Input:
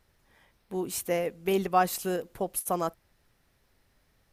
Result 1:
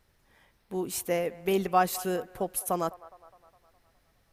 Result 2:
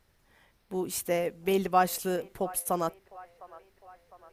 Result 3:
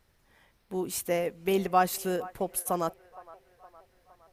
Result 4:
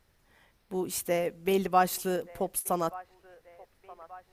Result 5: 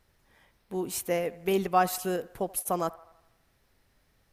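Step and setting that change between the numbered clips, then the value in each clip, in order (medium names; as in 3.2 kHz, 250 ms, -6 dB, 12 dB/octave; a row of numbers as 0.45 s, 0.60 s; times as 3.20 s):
feedback echo behind a band-pass, time: 206 ms, 706 ms, 464 ms, 1181 ms, 81 ms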